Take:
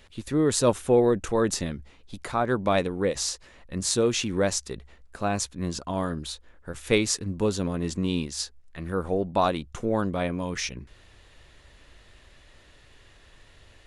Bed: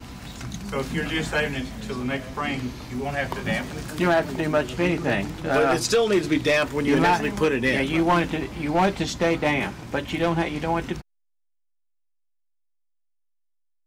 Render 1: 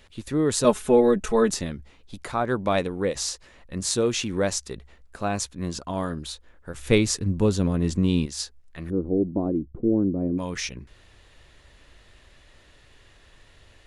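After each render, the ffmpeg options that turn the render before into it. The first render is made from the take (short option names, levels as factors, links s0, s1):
-filter_complex "[0:a]asettb=1/sr,asplit=3[s0][s1][s2];[s0]atrim=end=0.644[s3];[s1]atrim=start=0.64:end=1.51,asetpts=PTS-STARTPTS,afade=t=in:d=0.004:c=qsin,afade=t=out:st=0.866:d=0.004:c=qsin,aecho=1:1:4.7:0.91,atrim=end_sample=38367[s4];[s2]atrim=start=1.506[s5];[s3][s4]acrossfade=d=0.004:c1=hsin:c2=qsin[s6];[s6][s5]acrossfade=d=0.004:c1=qsin:c2=hsin,asettb=1/sr,asplit=3[s7][s8][s9];[s7]atrim=end=6.784[s10];[s8]atrim=start=6.78:end=8.26,asetpts=PTS-STARTPTS,afade=t=in:d=0.004:c=qsin,afade=t=out:st=1.476:d=0.004:c=qsin,lowshelf=f=250:g=9[s11];[s9]atrim=start=8.256[s12];[s10][s11]acrossfade=d=0.004:c1=hsin:c2=qsin[s13];[s13][s12]acrossfade=d=0.004:c1=qsin:c2=hsin,asplit=3[s14][s15][s16];[s14]afade=t=out:st=8.89:d=0.02[s17];[s15]lowpass=f=320:t=q:w=3.2,afade=t=in:st=8.89:d=0.02,afade=t=out:st=10.37:d=0.02[s18];[s16]afade=t=in:st=10.37:d=0.02[s19];[s17][s18][s19]amix=inputs=3:normalize=0"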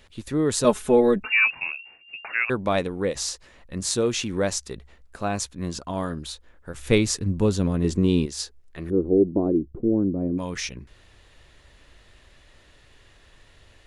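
-filter_complex "[0:a]asettb=1/sr,asplit=3[s0][s1][s2];[s0]atrim=end=1.234[s3];[s1]atrim=start=1.23:end=2.5,asetpts=PTS-STARTPTS,afade=t=in:d=0.004:c=qsin,afade=t=out:st=1.266:d=0.004:c=qsin,lowpass=f=2400:t=q:w=0.5098,lowpass=f=2400:t=q:w=0.6013,lowpass=f=2400:t=q:w=0.9,lowpass=f=2400:t=q:w=2.563,afreqshift=-2800[s4];[s2]atrim=start=2.496[s5];[s3][s4]acrossfade=d=0.004:c1=hsin:c2=qsin[s6];[s6][s5]acrossfade=d=0.004:c1=qsin:c2=hsin,asettb=1/sr,asplit=3[s7][s8][s9];[s7]atrim=end=7.844[s10];[s8]atrim=start=7.84:end=9.79,asetpts=PTS-STARTPTS,afade=t=in:d=0.004:c=qsin,afade=t=out:st=1.946:d=0.004:c=qsin,equalizer=f=390:w=2.3:g=7.5[s11];[s9]atrim=start=9.786[s12];[s10][s11]acrossfade=d=0.004:c1=hsin:c2=qsin[s13];[s13][s12]acrossfade=d=0.004:c1=qsin:c2=hsin"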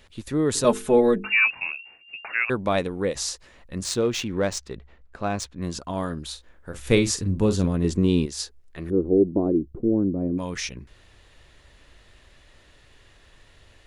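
-filter_complex "[0:a]asplit=3[s0][s1][s2];[s0]afade=t=out:st=0.54:d=0.02[s3];[s1]bandreject=f=50:t=h:w=6,bandreject=f=100:t=h:w=6,bandreject=f=150:t=h:w=6,bandreject=f=200:t=h:w=6,bandreject=f=250:t=h:w=6,bandreject=f=300:t=h:w=6,bandreject=f=350:t=h:w=6,bandreject=f=400:t=h:w=6,bandreject=f=450:t=h:w=6,afade=t=in:st=0.54:d=0.02,afade=t=out:st=1.78:d=0.02[s4];[s2]afade=t=in:st=1.78:d=0.02[s5];[s3][s4][s5]amix=inputs=3:normalize=0,asettb=1/sr,asplit=3[s6][s7][s8];[s6]atrim=end=3.844[s9];[s7]atrim=start=3.84:end=5.62,asetpts=PTS-STARTPTS,afade=t=in:d=0.004:c=qsin,afade=t=out:st=1.776:d=0.004:c=qsin,adynamicsmooth=sensitivity=3.5:basefreq=3800[s10];[s8]atrim=start=5.616[s11];[s9][s10]acrossfade=d=0.004:c1=hsin:c2=qsin[s12];[s12][s11]acrossfade=d=0.004:c1=qsin:c2=hsin,asettb=1/sr,asplit=3[s13][s14][s15];[s13]atrim=end=6.264[s16];[s14]atrim=start=6.26:end=7.66,asetpts=PTS-STARTPTS,afade=t=in:d=0.004:c=qsin,afade=t=out:st=1.396:d=0.004:c=qsin,asplit=2[s17][s18];[s18]adelay=43,volume=0.316[s19];[s17][s19]amix=inputs=2:normalize=0,atrim=end_sample=61740[s20];[s15]atrim=start=7.656[s21];[s16][s20]acrossfade=d=0.004:c1=hsin:c2=qsin[s22];[s22][s21]acrossfade=d=0.004:c1=qsin:c2=hsin"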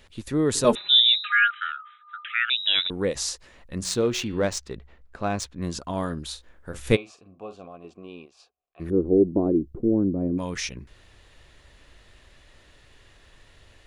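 -filter_complex "[0:a]asettb=1/sr,asplit=3[s0][s1][s2];[s0]atrim=end=0.754[s3];[s1]atrim=start=0.75:end=2.9,asetpts=PTS-STARTPTS,afade=t=in:d=0.004:c=qsin,afade=t=out:st=2.146:d=0.004:c=qsin,lowpass=f=3400:t=q:w=0.5098,lowpass=f=3400:t=q:w=0.6013,lowpass=f=3400:t=q:w=0.9,lowpass=f=3400:t=q:w=2.563,afreqshift=-4000[s4];[s2]atrim=start=2.896[s5];[s3][s4]acrossfade=d=0.004:c1=hsin:c2=qsin[s6];[s6][s5]acrossfade=d=0.004:c1=qsin:c2=hsin,asettb=1/sr,asplit=3[s7][s8][s9];[s7]atrim=end=3.794[s10];[s8]atrim=start=3.79:end=4.5,asetpts=PTS-STARTPTS,afade=t=in:d=0.004:c=qsin,afade=t=out:st=0.706:d=0.004:c=qsin,bandreject=f=183.6:t=h:w=4,bandreject=f=367.2:t=h:w=4,bandreject=f=550.8:t=h:w=4,bandreject=f=734.4:t=h:w=4,bandreject=f=918:t=h:w=4,bandreject=f=1101.6:t=h:w=4,bandreject=f=1285.2:t=h:w=4,bandreject=f=1468.8:t=h:w=4,bandreject=f=1652.4:t=h:w=4,bandreject=f=1836:t=h:w=4,bandreject=f=2019.6:t=h:w=4,bandreject=f=2203.2:t=h:w=4,bandreject=f=2386.8:t=h:w=4,bandreject=f=2570.4:t=h:w=4,bandreject=f=2754:t=h:w=4,bandreject=f=2937.6:t=h:w=4,bandreject=f=3121.2:t=h:w=4,bandreject=f=3304.8:t=h:w=4,bandreject=f=3488.4:t=h:w=4,bandreject=f=3672:t=h:w=4,bandreject=f=3855.6:t=h:w=4,bandreject=f=4039.2:t=h:w=4,bandreject=f=4222.8:t=h:w=4,bandreject=f=4406.4:t=h:w=4,bandreject=f=4590:t=h:w=4[s11];[s9]atrim=start=4.496[s12];[s10][s11]acrossfade=d=0.004:c1=hsin:c2=qsin[s13];[s13][s12]acrossfade=d=0.004:c1=qsin:c2=hsin,asplit=3[s14][s15][s16];[s14]afade=t=out:st=6.95:d=0.02[s17];[s15]asplit=3[s18][s19][s20];[s18]bandpass=f=730:t=q:w=8,volume=1[s21];[s19]bandpass=f=1090:t=q:w=8,volume=0.501[s22];[s20]bandpass=f=2440:t=q:w=8,volume=0.355[s23];[s21][s22][s23]amix=inputs=3:normalize=0,afade=t=in:st=6.95:d=0.02,afade=t=out:st=8.79:d=0.02[s24];[s16]afade=t=in:st=8.79:d=0.02[s25];[s17][s24][s25]amix=inputs=3:normalize=0"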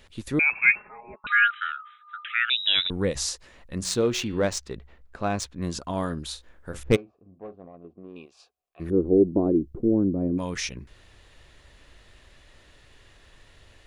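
-filter_complex "[0:a]asettb=1/sr,asplit=3[s0][s1][s2];[s0]atrim=end=0.394[s3];[s1]atrim=start=0.39:end=1.27,asetpts=PTS-STARTPTS,afade=t=in:d=0.004:c=qsin,afade=t=out:st=0.876:d=0.004:c=qsin,lowpass=f=2300:t=q:w=0.5098,lowpass=f=2300:t=q:w=0.6013,lowpass=f=2300:t=q:w=0.9,lowpass=f=2300:t=q:w=2.563,afreqshift=-2700[s4];[s2]atrim=start=1.266[s5];[s3][s4]acrossfade=d=0.004:c1=hsin:c2=qsin[s6];[s6][s5]acrossfade=d=0.004:c1=qsin:c2=hsin,asplit=3[s7][s8][s9];[s7]afade=t=out:st=2.6:d=0.02[s10];[s8]asubboost=boost=2:cutoff=230,afade=t=in:st=2.6:d=0.02,afade=t=out:st=3.25:d=0.02[s11];[s9]afade=t=in:st=3.25:d=0.02[s12];[s10][s11][s12]amix=inputs=3:normalize=0,asettb=1/sr,asplit=3[s13][s14][s15];[s13]atrim=end=6.834[s16];[s14]atrim=start=6.83:end=8.16,asetpts=PTS-STARTPTS,afade=t=in:d=0.004:c=qsin,afade=t=out:st=1.326:d=0.004:c=qsin,adynamicsmooth=sensitivity=1:basefreq=510[s17];[s15]atrim=start=8.156[s18];[s16][s17]acrossfade=d=0.004:c1=hsin:c2=qsin[s19];[s19][s18]acrossfade=d=0.004:c1=qsin:c2=hsin"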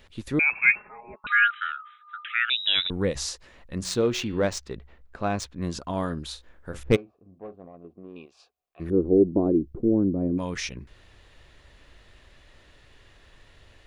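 -af "equalizer=f=9600:t=o:w=1.4:g=-5"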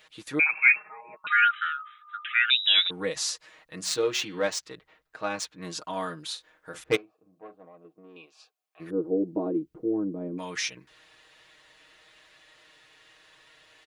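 -af "highpass=f=900:p=1,aecho=1:1:6.4:0.89"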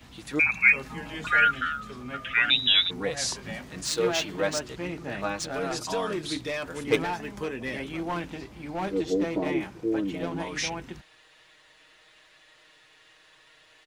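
-filter_complex "[1:a]volume=0.266[s0];[0:a][s0]amix=inputs=2:normalize=0"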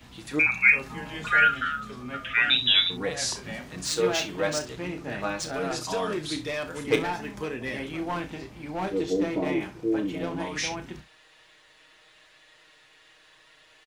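-af "aecho=1:1:33|65:0.316|0.168"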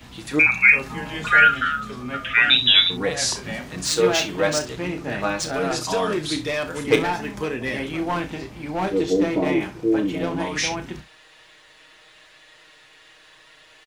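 -af "volume=2,alimiter=limit=0.708:level=0:latency=1"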